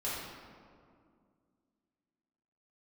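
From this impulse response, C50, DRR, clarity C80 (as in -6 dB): -1.5 dB, -9.5 dB, 1.0 dB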